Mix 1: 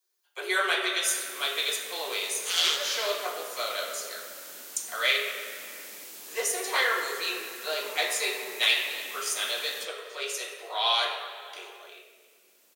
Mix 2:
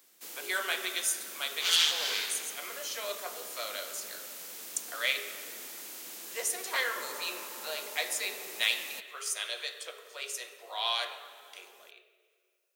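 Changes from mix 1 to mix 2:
speech: send -10.5 dB; background: entry -0.85 s

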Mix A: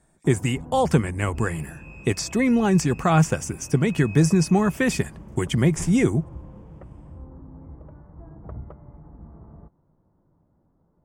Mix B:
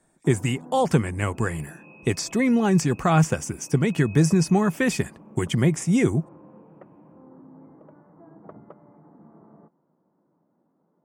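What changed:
first sound: add high-pass 190 Hz 24 dB/octave; second sound: add two resonant band-passes 1.1 kHz, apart 2.3 oct; reverb: off

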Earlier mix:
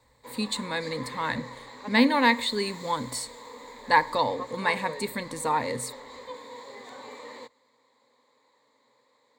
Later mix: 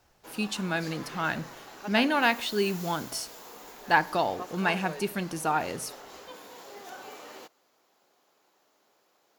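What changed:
background: remove distance through air 62 m; master: remove rippled EQ curve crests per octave 1, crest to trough 16 dB

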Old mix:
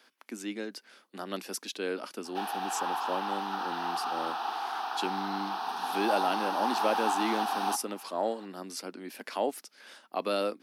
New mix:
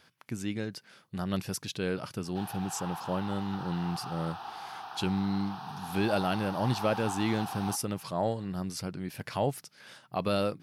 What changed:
background -8.0 dB; master: remove steep high-pass 230 Hz 48 dB/octave

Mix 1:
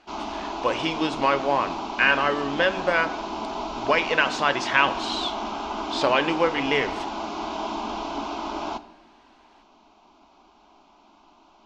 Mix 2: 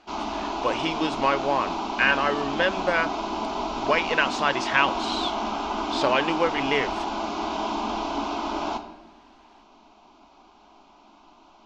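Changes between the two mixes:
speech: send off; background: send +7.5 dB

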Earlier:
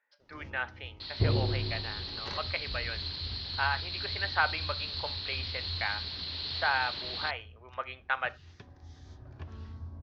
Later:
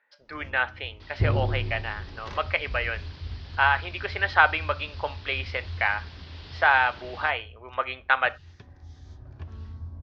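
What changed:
speech +9.0 dB; second sound: remove resonant low-pass 4.2 kHz, resonance Q 10; master: add bass shelf 76 Hz +10 dB

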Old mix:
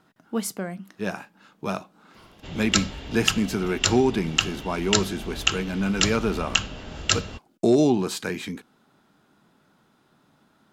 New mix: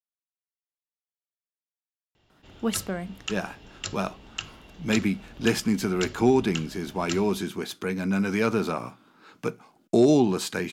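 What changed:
speech: entry +2.30 s; background -12.0 dB

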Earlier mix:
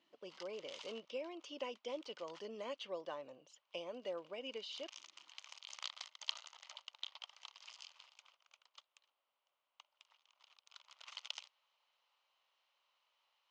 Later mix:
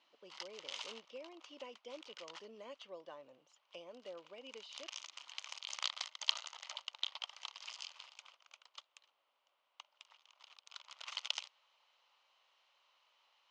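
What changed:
speech -6.5 dB; background +7.0 dB

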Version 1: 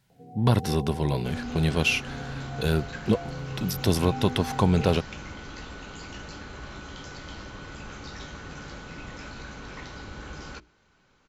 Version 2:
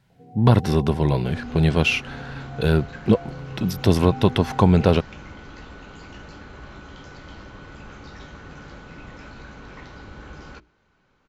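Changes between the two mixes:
speech +6.0 dB; master: add treble shelf 4.4 kHz -11.5 dB

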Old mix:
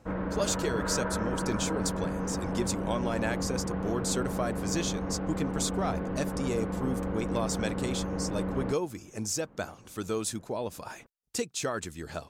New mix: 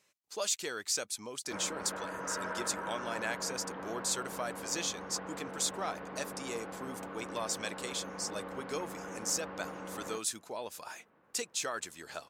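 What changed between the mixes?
background: entry +1.45 s; master: add high-pass 1.1 kHz 6 dB/octave

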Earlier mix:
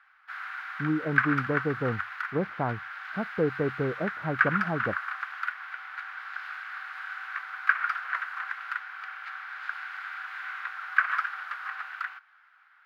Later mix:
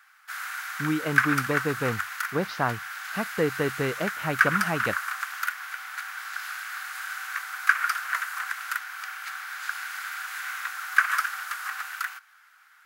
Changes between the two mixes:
speech: remove low-pass 1 kHz; master: remove distance through air 370 m

